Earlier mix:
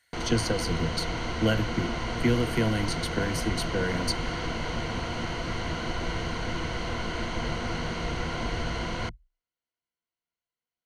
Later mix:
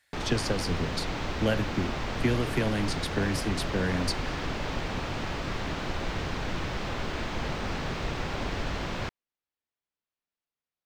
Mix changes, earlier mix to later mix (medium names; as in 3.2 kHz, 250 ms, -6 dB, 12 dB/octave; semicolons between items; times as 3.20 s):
background: remove steep low-pass 12 kHz 72 dB/octave; master: remove rippled EQ curve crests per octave 1.9, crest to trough 10 dB